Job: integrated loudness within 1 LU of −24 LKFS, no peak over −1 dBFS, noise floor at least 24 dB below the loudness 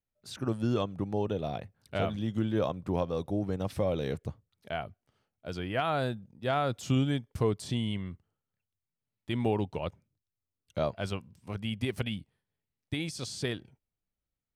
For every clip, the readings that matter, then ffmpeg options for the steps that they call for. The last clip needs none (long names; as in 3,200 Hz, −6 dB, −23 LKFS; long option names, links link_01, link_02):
integrated loudness −33.0 LKFS; sample peak −18.0 dBFS; target loudness −24.0 LKFS
→ -af "volume=9dB"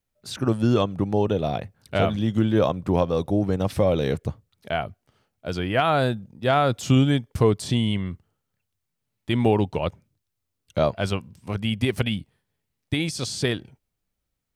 integrated loudness −24.0 LKFS; sample peak −9.0 dBFS; background noise floor −80 dBFS